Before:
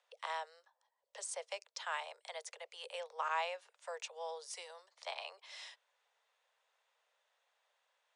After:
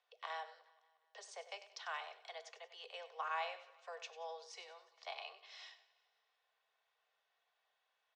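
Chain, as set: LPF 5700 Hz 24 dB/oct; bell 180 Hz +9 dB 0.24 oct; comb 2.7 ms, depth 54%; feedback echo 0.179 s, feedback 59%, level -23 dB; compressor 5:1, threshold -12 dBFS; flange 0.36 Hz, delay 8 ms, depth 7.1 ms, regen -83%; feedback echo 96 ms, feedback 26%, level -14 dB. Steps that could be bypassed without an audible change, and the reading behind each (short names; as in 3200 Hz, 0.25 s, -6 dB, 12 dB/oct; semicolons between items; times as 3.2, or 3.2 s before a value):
bell 180 Hz: input band starts at 380 Hz; compressor, threshold -12 dBFS: input peak -24.5 dBFS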